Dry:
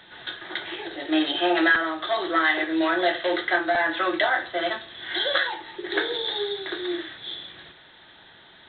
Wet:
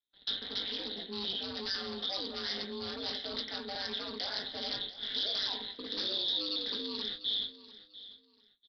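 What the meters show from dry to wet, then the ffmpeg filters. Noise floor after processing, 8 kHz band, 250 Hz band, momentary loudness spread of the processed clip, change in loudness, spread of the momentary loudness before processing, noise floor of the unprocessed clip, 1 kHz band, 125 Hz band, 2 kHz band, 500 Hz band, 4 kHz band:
−67 dBFS, can't be measured, −16.5 dB, 7 LU, −10.0 dB, 13 LU, −51 dBFS, −20.0 dB, −3.5 dB, −22.0 dB, −16.5 dB, −3.0 dB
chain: -filter_complex "[0:a]aemphasis=mode=reproduction:type=50kf,agate=range=-48dB:threshold=-41dB:ratio=16:detection=peak,equalizer=frequency=1100:width_type=o:width=2.3:gain=-14.5,areverse,acompressor=threshold=-38dB:ratio=6,areverse,aeval=exprs='0.0316*sin(PI/2*2.51*val(0)/0.0316)':channel_layout=same,aeval=exprs='val(0)*sin(2*PI*99*n/s)':channel_layout=same,aexciter=amount=8.2:drive=7.9:freq=3800,asplit=2[link_01][link_02];[link_02]adelay=19,volume=-11.5dB[link_03];[link_01][link_03]amix=inputs=2:normalize=0,asplit=2[link_04][link_05];[link_05]aecho=0:1:694|1388:0.15|0.0374[link_06];[link_04][link_06]amix=inputs=2:normalize=0,aresample=11025,aresample=44100,volume=-6.5dB"

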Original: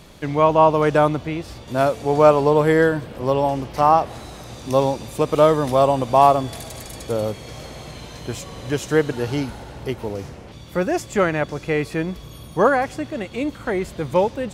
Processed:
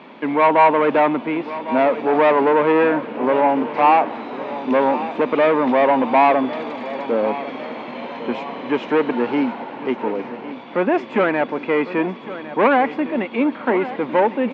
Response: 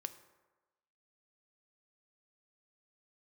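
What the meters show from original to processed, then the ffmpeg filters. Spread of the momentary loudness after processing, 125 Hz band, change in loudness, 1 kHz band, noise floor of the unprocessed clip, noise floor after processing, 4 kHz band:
13 LU, −11.5 dB, +1.0 dB, +2.5 dB, −40 dBFS, −35 dBFS, −1.5 dB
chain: -af "asoftclip=type=tanh:threshold=-17.5dB,highpass=frequency=230:width=0.5412,highpass=frequency=230:width=1.3066,equalizer=frequency=240:width_type=q:width=4:gain=9,equalizer=frequency=940:width_type=q:width=4:gain=8,equalizer=frequency=2300:width_type=q:width=4:gain=4,lowpass=frequency=2900:width=0.5412,lowpass=frequency=2900:width=1.3066,aecho=1:1:1105|2210|3315|4420|5525:0.2|0.0978|0.0479|0.0235|0.0115,volume=5dB"

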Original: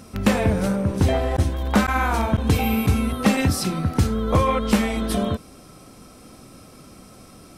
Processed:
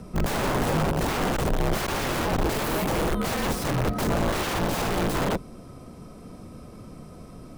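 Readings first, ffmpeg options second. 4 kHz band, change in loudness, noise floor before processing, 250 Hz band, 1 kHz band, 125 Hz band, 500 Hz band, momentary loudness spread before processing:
−1.0 dB, −4.5 dB, −46 dBFS, −6.5 dB, −2.5 dB, −6.5 dB, −2.5 dB, 4 LU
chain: -af "aeval=exprs='(mod(10*val(0)+1,2)-1)/10':channel_layout=same,afreqshift=-39,tiltshelf=frequency=1400:gain=6.5,volume=-2.5dB"

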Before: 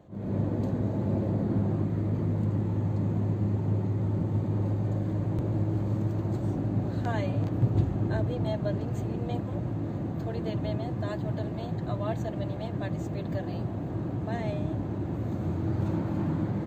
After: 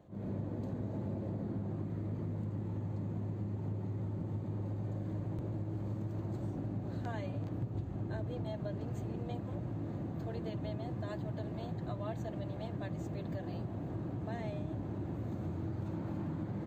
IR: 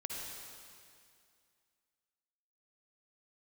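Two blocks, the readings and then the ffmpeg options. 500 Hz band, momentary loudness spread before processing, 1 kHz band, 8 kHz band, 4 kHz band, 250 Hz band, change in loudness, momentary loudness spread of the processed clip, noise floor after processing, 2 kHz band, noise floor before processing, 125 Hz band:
−9.0 dB, 5 LU, −9.0 dB, can't be measured, −8.5 dB, −9.5 dB, −9.5 dB, 1 LU, −42 dBFS, −9.0 dB, −34 dBFS, −9.5 dB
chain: -af "acompressor=threshold=-29dB:ratio=6,volume=-5.5dB"

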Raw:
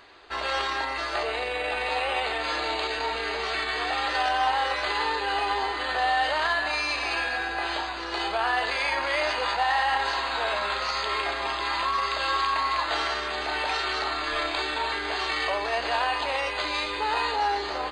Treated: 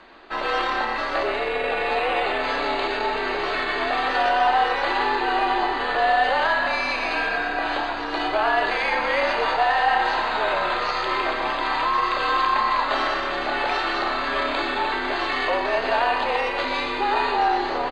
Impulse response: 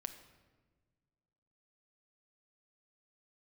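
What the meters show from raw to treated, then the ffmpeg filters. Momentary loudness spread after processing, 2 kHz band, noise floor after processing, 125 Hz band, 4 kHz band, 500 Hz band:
5 LU, +3.5 dB, −27 dBFS, can't be measured, 0.0 dB, +6.5 dB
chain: -filter_complex "[0:a]afreqshift=-44,aemphasis=mode=reproduction:type=75fm,asplit=7[link_01][link_02][link_03][link_04][link_05][link_06][link_07];[link_02]adelay=123,afreqshift=35,volume=-9dB[link_08];[link_03]adelay=246,afreqshift=70,volume=-14.7dB[link_09];[link_04]adelay=369,afreqshift=105,volume=-20.4dB[link_10];[link_05]adelay=492,afreqshift=140,volume=-26dB[link_11];[link_06]adelay=615,afreqshift=175,volume=-31.7dB[link_12];[link_07]adelay=738,afreqshift=210,volume=-37.4dB[link_13];[link_01][link_08][link_09][link_10][link_11][link_12][link_13]amix=inputs=7:normalize=0,volume=4.5dB"

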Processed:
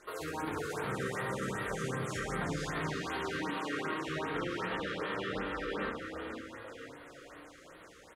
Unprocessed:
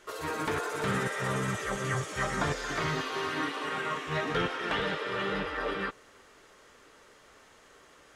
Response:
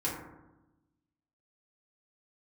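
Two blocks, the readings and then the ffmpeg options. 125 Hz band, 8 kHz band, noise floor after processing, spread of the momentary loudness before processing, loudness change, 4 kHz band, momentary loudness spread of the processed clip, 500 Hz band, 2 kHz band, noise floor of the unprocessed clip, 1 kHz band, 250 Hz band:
−5.0 dB, −5.5 dB, −55 dBFS, 3 LU, −5.0 dB, −6.5 dB, 15 LU, −3.5 dB, −5.0 dB, −58 dBFS, −5.0 dB, −2.0 dB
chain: -filter_complex "[0:a]alimiter=level_in=4.5dB:limit=-24dB:level=0:latency=1:release=188,volume=-4.5dB,asplit=7[link_01][link_02][link_03][link_04][link_05][link_06][link_07];[link_02]adelay=497,afreqshift=33,volume=-7dB[link_08];[link_03]adelay=994,afreqshift=66,volume=-12.5dB[link_09];[link_04]adelay=1491,afreqshift=99,volume=-18dB[link_10];[link_05]adelay=1988,afreqshift=132,volume=-23.5dB[link_11];[link_06]adelay=2485,afreqshift=165,volume=-29.1dB[link_12];[link_07]adelay=2982,afreqshift=198,volume=-34.6dB[link_13];[link_01][link_08][link_09][link_10][link_11][link_12][link_13]amix=inputs=7:normalize=0,asplit=2[link_14][link_15];[1:a]atrim=start_sample=2205,adelay=19[link_16];[link_15][link_16]afir=irnorm=-1:irlink=0,volume=-7.5dB[link_17];[link_14][link_17]amix=inputs=2:normalize=0,afftfilt=real='re*(1-between(b*sr/1024,760*pow(6800/760,0.5+0.5*sin(2*PI*2.6*pts/sr))/1.41,760*pow(6800/760,0.5+0.5*sin(2*PI*2.6*pts/sr))*1.41))':imag='im*(1-between(b*sr/1024,760*pow(6800/760,0.5+0.5*sin(2*PI*2.6*pts/sr))/1.41,760*pow(6800/760,0.5+0.5*sin(2*PI*2.6*pts/sr))*1.41))':win_size=1024:overlap=0.75,volume=-1.5dB"

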